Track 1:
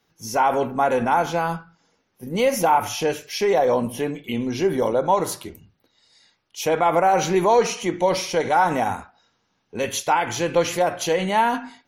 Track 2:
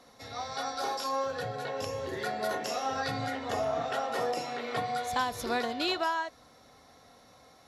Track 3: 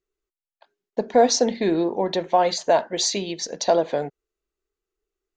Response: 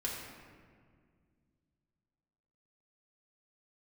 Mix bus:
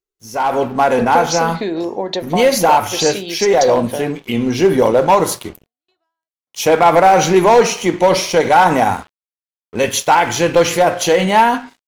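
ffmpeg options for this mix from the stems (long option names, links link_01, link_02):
-filter_complex "[0:a]volume=13dB,asoftclip=hard,volume=-13dB,flanger=delay=6.6:depth=9.9:regen=-85:speed=0.32:shape=triangular,aeval=exprs='sgn(val(0))*max(abs(val(0))-0.00355,0)':channel_layout=same,volume=1.5dB[link_01];[1:a]aeval=exprs='val(0)*pow(10,-37*if(lt(mod(1.7*n/s,1),2*abs(1.7)/1000),1-mod(1.7*n/s,1)/(2*abs(1.7)/1000),(mod(1.7*n/s,1)-2*abs(1.7)/1000)/(1-2*abs(1.7)/1000))/20)':channel_layout=same,volume=-10.5dB[link_02];[2:a]bass=frequency=250:gain=-3,treble=frequency=4000:gain=5,acompressor=threshold=-22dB:ratio=6,volume=-6dB,asplit=2[link_03][link_04];[link_04]apad=whole_len=338616[link_05];[link_02][link_05]sidechaingate=range=-37dB:threshold=-39dB:ratio=16:detection=peak[link_06];[link_01][link_06][link_03]amix=inputs=3:normalize=0,dynaudnorm=framelen=150:gausssize=7:maxgain=14.5dB"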